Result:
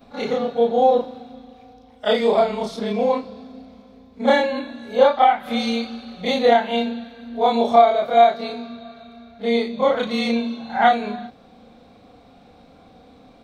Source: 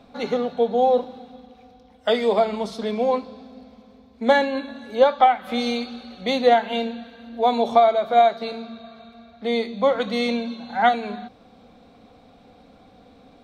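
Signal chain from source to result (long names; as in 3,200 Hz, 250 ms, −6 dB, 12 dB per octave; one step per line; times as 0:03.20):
every overlapping window played backwards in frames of 77 ms
level +5 dB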